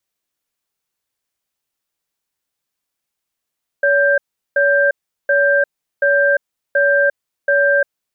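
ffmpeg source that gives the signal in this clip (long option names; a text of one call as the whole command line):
ffmpeg -f lavfi -i "aevalsrc='0.211*(sin(2*PI*567*t)+sin(2*PI*1580*t))*clip(min(mod(t,0.73),0.35-mod(t,0.73))/0.005,0,1)':duration=4.04:sample_rate=44100" out.wav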